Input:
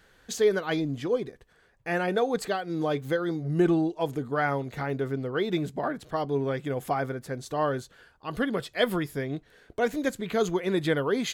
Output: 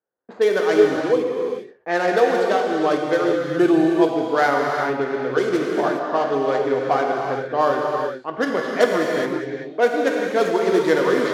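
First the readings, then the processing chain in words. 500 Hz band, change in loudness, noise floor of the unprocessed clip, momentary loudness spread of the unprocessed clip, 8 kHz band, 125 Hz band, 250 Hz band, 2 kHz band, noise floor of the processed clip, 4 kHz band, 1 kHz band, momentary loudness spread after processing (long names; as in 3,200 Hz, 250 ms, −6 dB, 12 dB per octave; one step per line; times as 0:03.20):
+9.5 dB, +8.5 dB, −62 dBFS, 8 LU, can't be measured, −3.0 dB, +7.0 dB, +8.5 dB, −41 dBFS, +4.5 dB, +10.5 dB, 7 LU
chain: running median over 15 samples
low-pass that shuts in the quiet parts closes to 920 Hz, open at −22 dBFS
noise gate −52 dBFS, range −29 dB
high-pass filter 340 Hz 12 dB per octave
reverb whose tail is shaped and stops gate 440 ms flat, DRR −0.5 dB
level +8 dB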